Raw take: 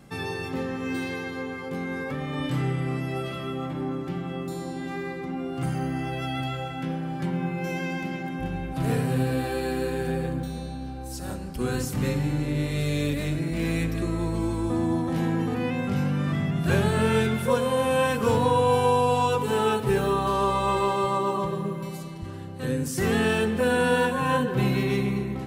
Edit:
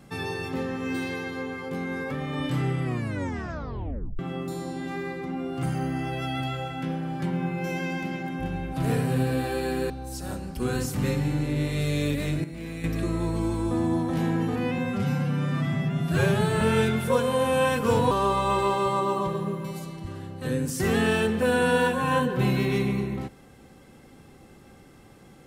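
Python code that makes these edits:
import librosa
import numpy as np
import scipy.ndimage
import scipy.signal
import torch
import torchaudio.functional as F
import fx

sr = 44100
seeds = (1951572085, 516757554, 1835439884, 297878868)

y = fx.edit(x, sr, fx.tape_stop(start_s=2.84, length_s=1.35),
    fx.cut(start_s=9.9, length_s=0.99),
    fx.clip_gain(start_s=13.43, length_s=0.4, db=-9.5),
    fx.stretch_span(start_s=15.77, length_s=1.22, factor=1.5),
    fx.cut(start_s=18.49, length_s=1.8), tone=tone)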